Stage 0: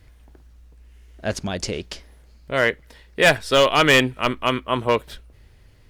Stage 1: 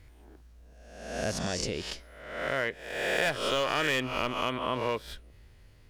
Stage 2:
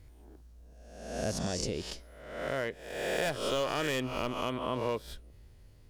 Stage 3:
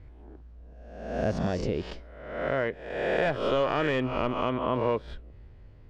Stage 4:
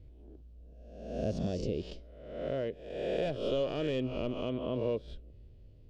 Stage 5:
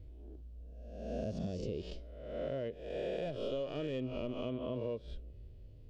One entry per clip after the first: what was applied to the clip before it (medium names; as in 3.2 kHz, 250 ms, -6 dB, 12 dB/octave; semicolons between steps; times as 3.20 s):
reverse spectral sustain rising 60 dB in 0.89 s; compression 3:1, threshold -21 dBFS, peak gain reduction 9.5 dB; trim -6.5 dB
peaking EQ 2 kHz -7.5 dB 2.1 oct
low-pass 2.2 kHz 12 dB/octave; trim +6 dB
high-order bell 1.3 kHz -14 dB; trim -4.5 dB
harmonic-percussive split percussive -9 dB; compression, threshold -38 dBFS, peak gain reduction 10 dB; trim +3.5 dB